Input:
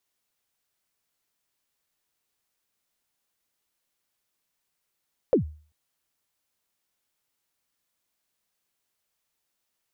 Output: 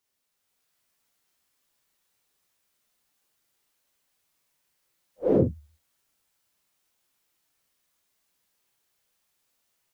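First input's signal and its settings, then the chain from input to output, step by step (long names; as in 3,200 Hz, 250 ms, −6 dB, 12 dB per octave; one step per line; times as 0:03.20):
synth kick length 0.39 s, from 580 Hz, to 76 Hz, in 111 ms, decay 0.41 s, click off, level −13 dB
random phases in long frames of 200 ms
automatic gain control gain up to 5 dB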